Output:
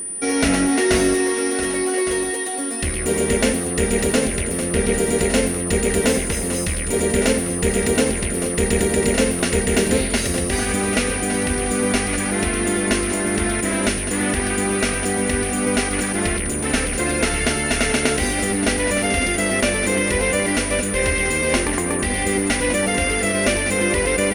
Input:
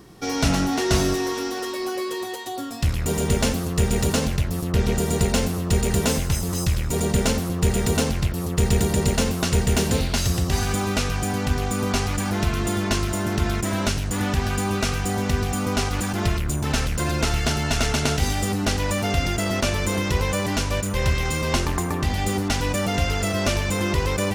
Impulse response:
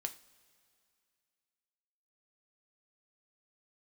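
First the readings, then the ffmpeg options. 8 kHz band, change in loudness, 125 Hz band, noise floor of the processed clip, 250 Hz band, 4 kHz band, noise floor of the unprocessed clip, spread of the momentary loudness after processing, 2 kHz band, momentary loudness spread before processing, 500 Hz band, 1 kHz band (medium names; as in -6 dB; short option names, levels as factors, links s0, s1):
+7.5 dB, +4.0 dB, -4.5 dB, -24 dBFS, +4.0 dB, +1.5 dB, -28 dBFS, 3 LU, +7.0 dB, 4 LU, +6.0 dB, +1.0 dB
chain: -af "equalizer=f=125:t=o:w=1:g=-9,equalizer=f=250:t=o:w=1:g=8,equalizer=f=500:t=o:w=1:g=8,equalizer=f=1000:t=o:w=1:g=-3,equalizer=f=2000:t=o:w=1:g=11,aecho=1:1:1162:0.282,aeval=exprs='val(0)+0.0631*sin(2*PI*9400*n/s)':c=same,volume=0.794"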